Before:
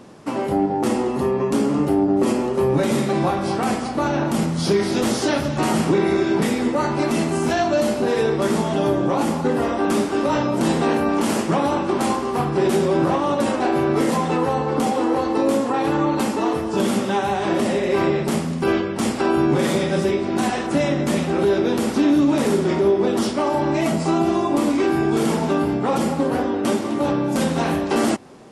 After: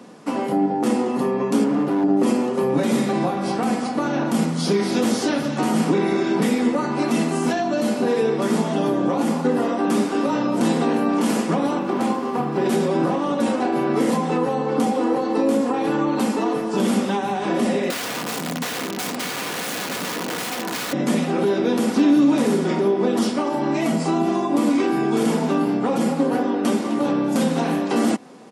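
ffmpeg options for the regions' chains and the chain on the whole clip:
ffmpeg -i in.wav -filter_complex "[0:a]asettb=1/sr,asplit=3[link_01][link_02][link_03];[link_01]atrim=end=1.644[link_04];[link_02]atrim=start=1.64:end=2.04,asetpts=PTS-STARTPTS,afade=type=in:duration=0.004:curve=qsin,afade=type=out:start_time=0.396:duration=0.004:curve=qsin,lowpass=frequency=3000:poles=1,asoftclip=type=hard:threshold=-17dB[link_05];[link_03]atrim=start=2.036[link_06];[link_04][link_05]acrossfade=duration=0.004:curve1=hsin:curve2=qsin[link_07];[link_07][link_06]acrossfade=duration=0.004:curve1=qsin:curve2=hsin,asettb=1/sr,asplit=3[link_08][link_09][link_10];[link_08]atrim=end=11.794[link_11];[link_09]atrim=start=11.79:end=12.66,asetpts=PTS-STARTPTS,afade=type=in:duration=0.004:curve=qsin,afade=type=out:start_time=0.866:duration=0.004:curve=qsin,highshelf=frequency=4300:gain=-8.5,aeval=exprs='sgn(val(0))*max(abs(val(0))-0.00447,0)':channel_layout=same[link_12];[link_10]atrim=start=12.656[link_13];[link_11][link_12]acrossfade=duration=0.004:curve1=hsin:curve2=qsin[link_14];[link_14][link_13]acrossfade=duration=0.004:curve1=qsin:curve2=hsin,asettb=1/sr,asplit=3[link_15][link_16][link_17];[link_15]atrim=end=17.904[link_18];[link_16]atrim=start=17.9:end=20.93,asetpts=PTS-STARTPTS,afade=type=in:duration=0.004:curve=qsin,afade=type=out:start_time=3.026:duration=0.004:curve=qsin,highpass=frequency=110:poles=1,highshelf=frequency=9100:gain=-9.5,aeval=exprs='(mod(9.44*val(0)+1,2)-1)/9.44':channel_layout=same[link_19];[link_17]atrim=start=20.926[link_20];[link_18][link_19]acrossfade=duration=0.004:curve1=hsin:curve2=qsin[link_21];[link_21][link_20]acrossfade=duration=0.004:curve1=qsin:curve2=hsin,highpass=frequency=140:width=0.5412,highpass=frequency=140:width=1.3066,aecho=1:1:4.1:0.34,acrossover=split=480[link_22][link_23];[link_23]acompressor=threshold=-24dB:ratio=6[link_24];[link_22][link_24]amix=inputs=2:normalize=0" out.wav

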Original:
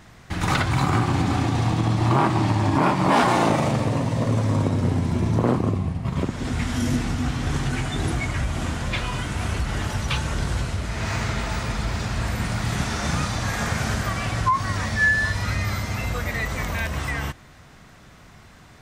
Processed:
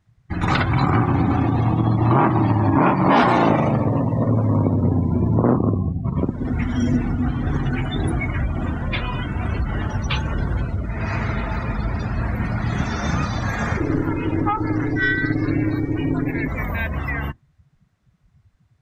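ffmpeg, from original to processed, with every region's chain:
ffmpeg -i in.wav -filter_complex "[0:a]asettb=1/sr,asplit=3[link_01][link_02][link_03];[link_01]atrim=end=13.774[link_04];[link_02]atrim=start=13.77:end=16.48,asetpts=PTS-STARTPTS,afade=type=in:duration=0.004:curve=qsin,afade=type=out:start_time=2.706:duration=0.004:curve=qsin,bass=frequency=250:gain=6,treble=frequency=4000:gain=1,aeval=exprs='val(0)*sin(2*PI*210*n/s)':channel_layout=same,aeval=exprs='clip(val(0),-1,0.0891)':channel_layout=same[link_05];[link_03]atrim=start=16.476[link_06];[link_04][link_05]acrossfade=duration=0.004:curve1=hsin:curve2=qsin[link_07];[link_07][link_06]acrossfade=duration=0.004:curve1=qsin:curve2=hsin,afftdn=noise_reduction=27:noise_floor=-32,equalizer=frequency=270:width=1.8:gain=2.5,volume=2.5dB" out.wav

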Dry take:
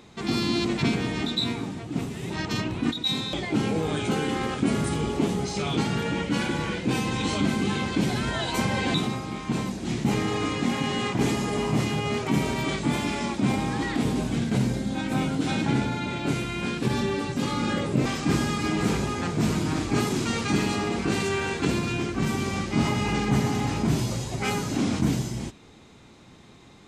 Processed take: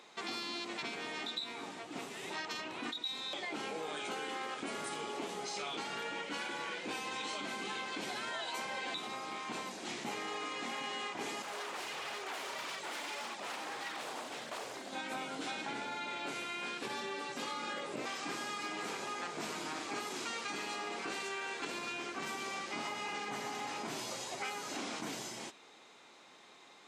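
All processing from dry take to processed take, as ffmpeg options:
ffmpeg -i in.wav -filter_complex "[0:a]asettb=1/sr,asplit=3[link_01][link_02][link_03];[link_01]atrim=end=11.424[link_04];[link_02]atrim=start=11.42:end=14.93,asetpts=PTS-STARTPTS,afade=type=in:duration=0.004:curve=qsin,afade=type=out:start_time=3.506:duration=0.004:curve=qsin,flanger=delay=0.6:depth=2.9:regen=18:speed=1.6:shape=triangular,aeval=exprs='0.0316*(abs(mod(val(0)/0.0316+3,4)-2)-1)':channel_layout=same[link_05];[link_03]atrim=start=14.926[link_06];[link_04][link_05]acrossfade=duration=0.004:curve1=hsin:curve2=qsin[link_07];[link_07][link_06]acrossfade=duration=0.004:curve1=qsin:curve2=hsin,highpass=580,highshelf=frequency=9300:gain=-5.5,acompressor=threshold=-35dB:ratio=6,volume=-2dB" out.wav

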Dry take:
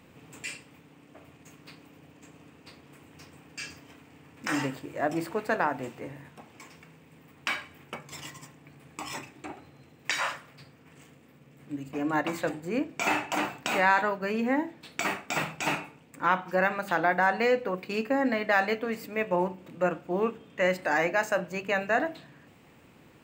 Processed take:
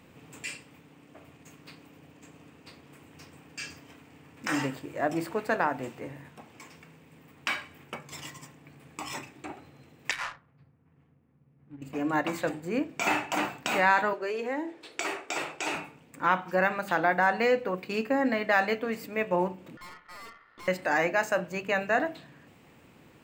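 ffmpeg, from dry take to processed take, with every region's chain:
ffmpeg -i in.wav -filter_complex "[0:a]asettb=1/sr,asplit=3[link_01][link_02][link_03];[link_01]atrim=end=10.114[link_04];[link_02]atrim=start=10.11:end=11.82,asetpts=PTS-STARTPTS,afade=type=in:duration=0.004:curve=qsin,afade=type=out:start_time=1.706:duration=0.004:curve=qsin,bandreject=frequency=600:width=10,adynamicsmooth=sensitivity=3:basefreq=710,equalizer=frequency=380:width=0.47:gain=-12[link_05];[link_03]atrim=start=11.816[link_06];[link_04][link_05]acrossfade=duration=0.004:curve1=hsin:curve2=qsin[link_07];[link_07][link_06]acrossfade=duration=0.004:curve1=qsin:curve2=hsin,asettb=1/sr,asplit=3[link_08][link_09][link_10];[link_08]atrim=end=14.134[link_11];[link_09]atrim=start=14.13:end=15.75,asetpts=PTS-STARTPTS,afade=type=in:duration=0.004:curve=qsin,afade=type=out:start_time=1.616:duration=0.004:curve=qsin,lowpass=11000,lowshelf=frequency=270:width_type=q:width=3:gain=-9.5,acrossover=split=150|3000[link_12][link_13][link_14];[link_13]acompressor=threshold=-31dB:ratio=2.5:attack=3.2:release=140:knee=2.83:detection=peak[link_15];[link_12][link_15][link_14]amix=inputs=3:normalize=0[link_16];[link_10]atrim=start=15.746[link_17];[link_11][link_16]acrossfade=duration=0.004:curve1=hsin:curve2=qsin[link_18];[link_18][link_17]acrossfade=duration=0.004:curve1=qsin:curve2=hsin,asettb=1/sr,asplit=3[link_19][link_20][link_21];[link_19]atrim=end=19.774[link_22];[link_20]atrim=start=19.77:end=20.68,asetpts=PTS-STARTPTS,afade=type=in:duration=0.004:curve=qsin,afade=type=out:start_time=0.906:duration=0.004:curve=qsin,aeval=exprs='val(0)*sin(2*PI*1600*n/s)':channel_layout=same,adynamicsmooth=sensitivity=1.5:basefreq=2500,aeval=exprs='(tanh(158*val(0)+0.4)-tanh(0.4))/158':channel_layout=same[link_23];[link_21]atrim=start=20.676[link_24];[link_22][link_23]acrossfade=duration=0.004:curve1=hsin:curve2=qsin[link_25];[link_25][link_24]acrossfade=duration=0.004:curve1=qsin:curve2=hsin" out.wav

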